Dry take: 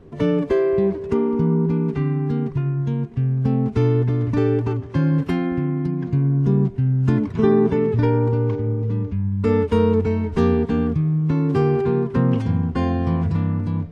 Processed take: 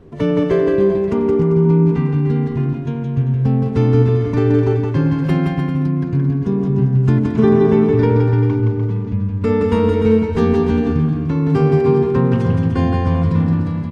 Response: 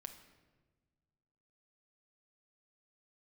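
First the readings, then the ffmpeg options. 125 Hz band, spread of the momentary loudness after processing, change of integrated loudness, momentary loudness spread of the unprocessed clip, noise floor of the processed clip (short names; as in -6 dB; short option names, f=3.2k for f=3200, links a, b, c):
+4.0 dB, 5 LU, +4.0 dB, 5 LU, -23 dBFS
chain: -af "aecho=1:1:170|297.5|393.1|464.8|518.6:0.631|0.398|0.251|0.158|0.1,volume=2dB"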